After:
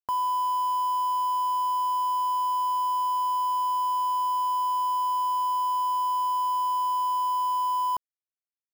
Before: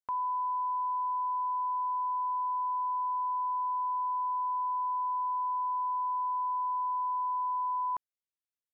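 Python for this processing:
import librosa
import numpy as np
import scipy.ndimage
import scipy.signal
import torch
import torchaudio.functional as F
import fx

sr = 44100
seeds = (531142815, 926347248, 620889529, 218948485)

y = fx.lowpass(x, sr, hz=1000.0, slope=6)
y = fx.quant_dither(y, sr, seeds[0], bits=8, dither='none')
y = y * 10.0 ** (9.0 / 20.0)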